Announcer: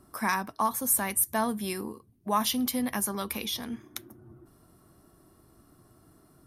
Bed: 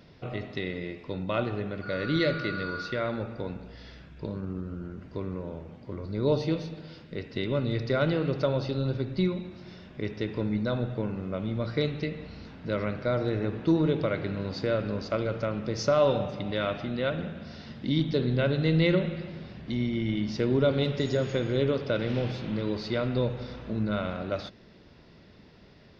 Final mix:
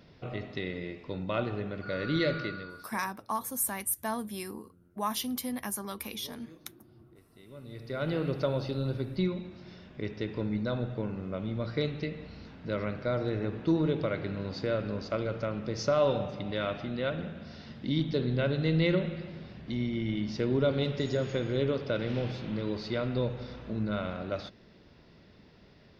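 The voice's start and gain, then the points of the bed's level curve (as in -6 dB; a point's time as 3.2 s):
2.70 s, -5.5 dB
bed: 2.41 s -2.5 dB
3.15 s -26 dB
7.35 s -26 dB
8.17 s -3 dB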